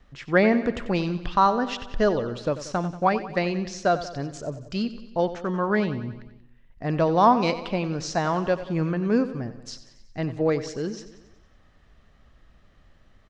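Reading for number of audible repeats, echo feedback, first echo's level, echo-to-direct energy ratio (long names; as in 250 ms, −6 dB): 5, 58%, −13.5 dB, −11.5 dB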